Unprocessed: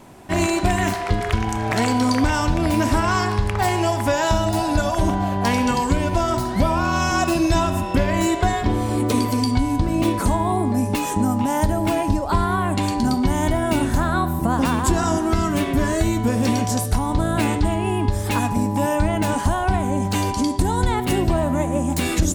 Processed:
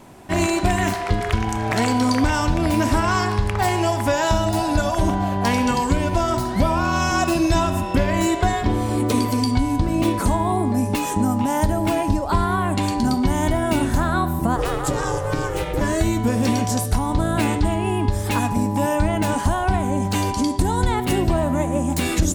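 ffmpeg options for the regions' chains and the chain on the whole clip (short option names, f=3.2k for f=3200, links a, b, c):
-filter_complex "[0:a]asettb=1/sr,asplit=3[a][b][c];[a]atrim=end=14.564[d];[b]atrim=start=14.56:end=15.81,asetpts=PTS-STARTPTS,afade=t=in:d=0.004:c=qsin,afade=t=out:st=1.246:d=0.004:c=qsin,highpass=55,aeval=exprs='val(0)*sin(2*PI*220*n/s)':c=same[e];[c]atrim=start=15.806[f];[d][e]acrossfade=d=0.004:c1=hsin:c2=qsin[g];[g][f]acrossfade=d=0.004:c1=qsin:c2=hsin"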